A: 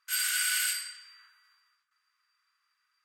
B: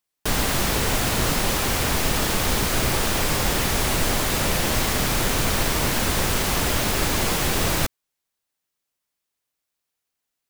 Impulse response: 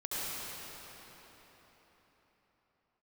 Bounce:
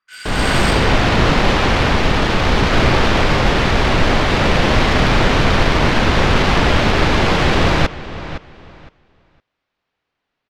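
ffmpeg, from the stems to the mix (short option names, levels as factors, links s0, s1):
-filter_complex "[0:a]volume=0.841[s0];[1:a]lowpass=4300,volume=1,asplit=2[s1][s2];[s2]volume=0.188,aecho=0:1:512|1024|1536:1|0.17|0.0289[s3];[s0][s1][s3]amix=inputs=3:normalize=0,adynamicsmooth=sensitivity=3.5:basefreq=4100,highshelf=f=11000:g=-11,dynaudnorm=f=150:g=5:m=4.73"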